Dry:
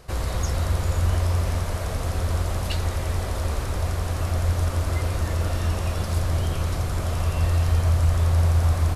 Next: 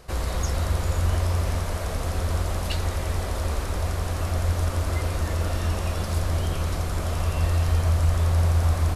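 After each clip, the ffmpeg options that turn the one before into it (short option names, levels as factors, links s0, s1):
-af "equalizer=f=110:t=o:w=0.22:g=-14"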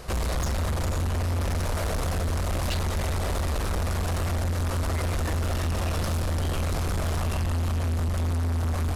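-af "acompressor=threshold=0.0794:ratio=6,asoftclip=type=tanh:threshold=0.0282,volume=2.37"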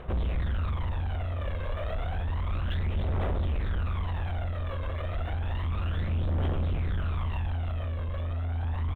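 -af "aphaser=in_gain=1:out_gain=1:delay=1.9:decay=0.59:speed=0.31:type=triangular,aresample=8000,aresample=44100,volume=0.398" -ar 44100 -c:a adpcm_ima_wav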